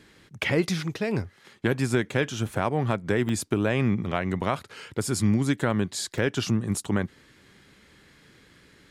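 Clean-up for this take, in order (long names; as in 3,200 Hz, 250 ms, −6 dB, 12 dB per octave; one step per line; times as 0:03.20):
repair the gap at 0:03.29/0:04.23/0:06.18, 1 ms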